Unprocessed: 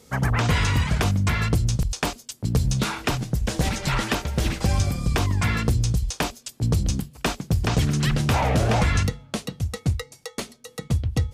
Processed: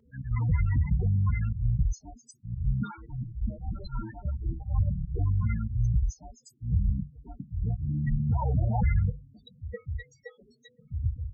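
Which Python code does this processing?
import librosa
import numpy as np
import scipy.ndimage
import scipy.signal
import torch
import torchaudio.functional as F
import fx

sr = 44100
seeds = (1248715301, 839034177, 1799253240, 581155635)

y = fx.auto_swell(x, sr, attack_ms=147.0)
y = fx.spec_topn(y, sr, count=8)
y = fx.comb_cascade(y, sr, direction='falling', hz=1.5)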